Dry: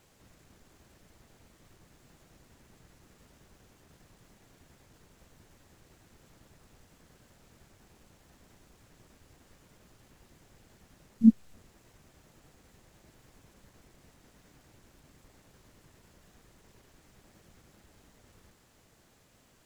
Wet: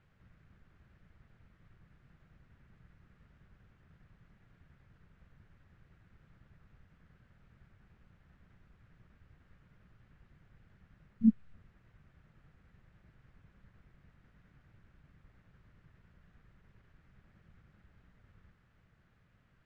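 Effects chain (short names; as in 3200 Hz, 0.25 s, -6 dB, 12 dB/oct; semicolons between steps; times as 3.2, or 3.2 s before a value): LPF 1600 Hz 12 dB/oct; band shelf 500 Hz -11 dB 2.4 oct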